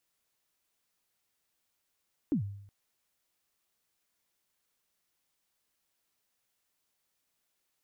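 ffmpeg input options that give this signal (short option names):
-f lavfi -i "aevalsrc='0.0708*pow(10,-3*t/0.73)*sin(2*PI*(330*0.104/log(100/330)*(exp(log(100/330)*min(t,0.104)/0.104)-1)+100*max(t-0.104,0)))':d=0.37:s=44100"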